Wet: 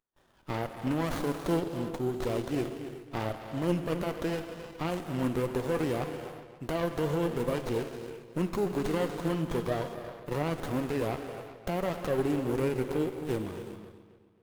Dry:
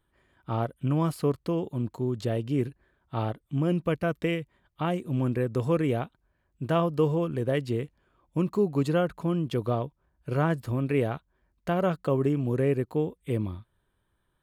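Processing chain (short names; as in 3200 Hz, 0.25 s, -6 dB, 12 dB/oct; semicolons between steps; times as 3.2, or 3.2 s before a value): gate with hold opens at -57 dBFS; RIAA curve recording; limiter -22.5 dBFS, peak gain reduction 10.5 dB; flange 0.91 Hz, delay 1.4 ms, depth 5.7 ms, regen +64%; darkening echo 0.268 s, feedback 37%, low-pass 4300 Hz, level -12.5 dB; non-linear reverb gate 0.43 s flat, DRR 6.5 dB; running maximum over 17 samples; gain +7 dB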